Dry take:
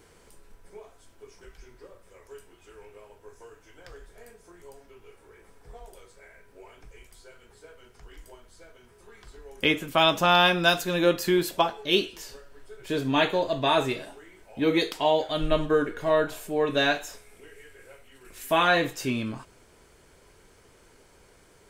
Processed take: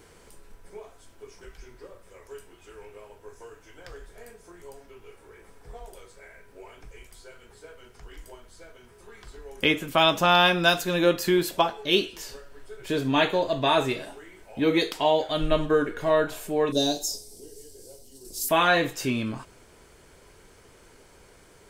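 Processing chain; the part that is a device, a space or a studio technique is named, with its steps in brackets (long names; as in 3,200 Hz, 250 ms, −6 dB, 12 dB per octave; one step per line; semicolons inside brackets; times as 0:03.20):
parallel compression (in parallel at −7.5 dB: downward compressor, threshold −33 dBFS, peak gain reduction 16.5 dB)
0:16.72–0:18.49: on the sum: drawn EQ curve 150 Hz 0 dB, 330 Hz +4 dB, 860 Hz −7 dB, 1,300 Hz −22 dB, 2,300 Hz −23 dB, 4,900 Hz +14 dB, 7,300 Hz +9 dB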